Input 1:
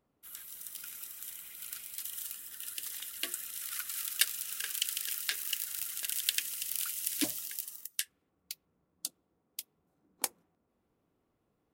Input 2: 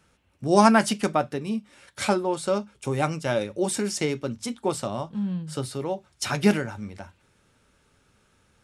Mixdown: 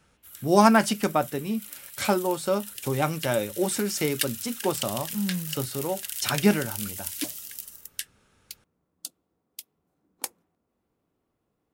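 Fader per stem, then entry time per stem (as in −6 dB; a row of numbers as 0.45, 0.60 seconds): +0.5, −0.5 decibels; 0.00, 0.00 seconds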